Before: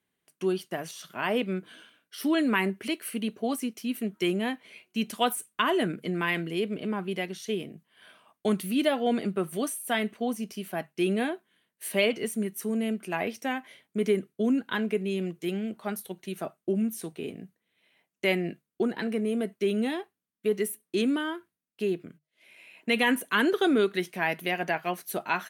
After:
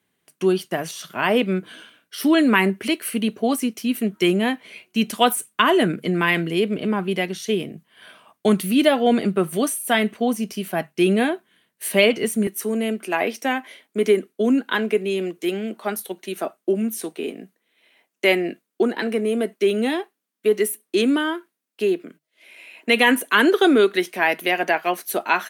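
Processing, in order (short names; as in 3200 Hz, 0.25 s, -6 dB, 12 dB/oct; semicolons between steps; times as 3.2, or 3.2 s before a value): HPF 58 Hz 24 dB/oct, from 12.47 s 240 Hz; gain +8.5 dB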